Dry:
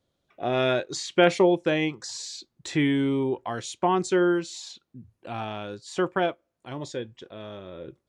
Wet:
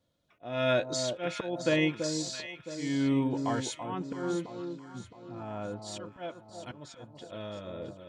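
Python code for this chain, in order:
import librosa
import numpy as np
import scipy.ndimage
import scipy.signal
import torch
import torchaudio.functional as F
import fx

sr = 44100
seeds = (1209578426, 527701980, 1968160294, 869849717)

y = fx.lowpass(x, sr, hz=1400.0, slope=12, at=(4.0, 5.82))
y = fx.auto_swell(y, sr, attack_ms=377.0)
y = fx.notch_comb(y, sr, f0_hz=390.0)
y = fx.echo_alternate(y, sr, ms=333, hz=1100.0, feedback_pct=64, wet_db=-6.5)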